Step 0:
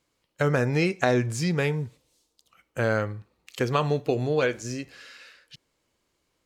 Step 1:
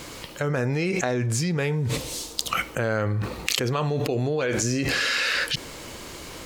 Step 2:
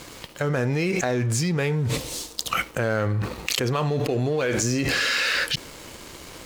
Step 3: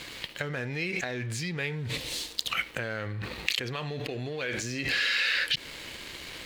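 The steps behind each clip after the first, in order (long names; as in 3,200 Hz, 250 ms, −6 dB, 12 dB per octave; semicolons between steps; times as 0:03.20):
envelope flattener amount 100%; level −4.5 dB
leveller curve on the samples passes 2; level −6.5 dB
downward compressor, threshold −27 dBFS, peak gain reduction 8 dB; flat-topped bell 2,700 Hz +9.5 dB; level −5 dB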